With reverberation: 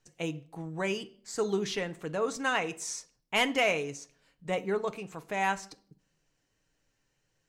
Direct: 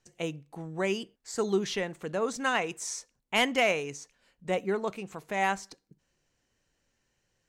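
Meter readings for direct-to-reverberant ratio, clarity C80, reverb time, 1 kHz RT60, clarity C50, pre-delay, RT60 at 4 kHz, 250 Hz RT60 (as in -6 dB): 7.5 dB, 24.5 dB, 0.50 s, 0.45 s, 20.0 dB, 6 ms, 0.45 s, 0.70 s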